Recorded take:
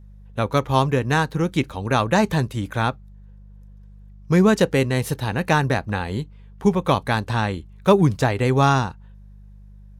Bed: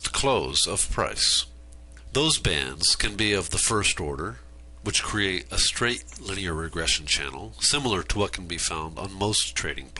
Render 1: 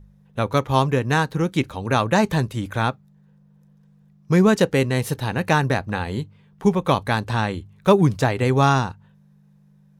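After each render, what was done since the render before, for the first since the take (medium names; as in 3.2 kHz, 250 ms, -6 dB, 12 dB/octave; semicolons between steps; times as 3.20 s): de-hum 50 Hz, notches 2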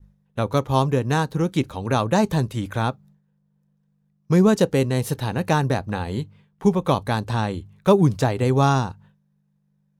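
expander -45 dBFS; dynamic bell 2 kHz, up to -7 dB, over -36 dBFS, Q 0.98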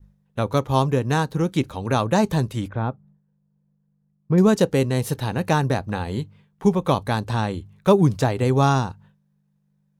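2.68–4.38 s: tape spacing loss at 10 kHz 45 dB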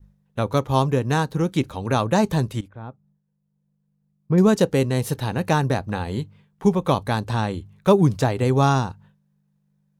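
2.61–4.40 s: fade in, from -16 dB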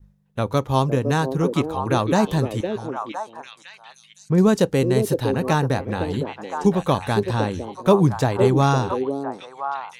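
repeats whose band climbs or falls 509 ms, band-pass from 380 Hz, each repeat 1.4 oct, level -1 dB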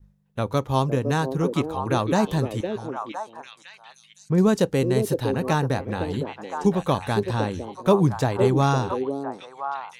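trim -2.5 dB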